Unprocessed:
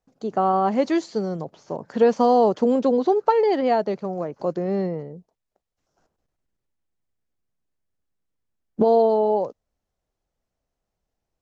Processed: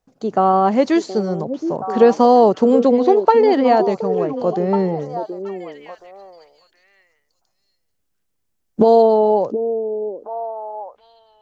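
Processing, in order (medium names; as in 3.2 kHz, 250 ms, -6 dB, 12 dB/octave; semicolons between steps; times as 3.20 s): 5.14–9.03 s: treble shelf 5.2 kHz +8 dB; repeats whose band climbs or falls 723 ms, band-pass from 350 Hz, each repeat 1.4 oct, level -6.5 dB; trim +5.5 dB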